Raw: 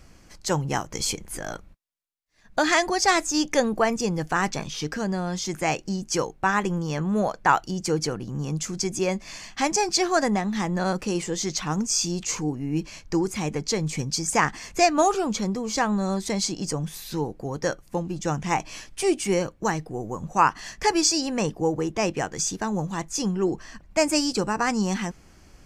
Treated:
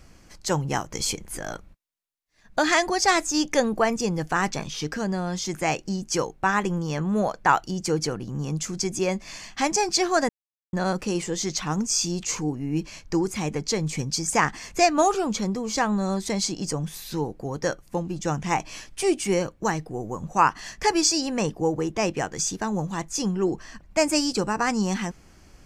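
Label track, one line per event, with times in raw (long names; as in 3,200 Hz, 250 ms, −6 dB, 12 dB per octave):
10.290000	10.730000	silence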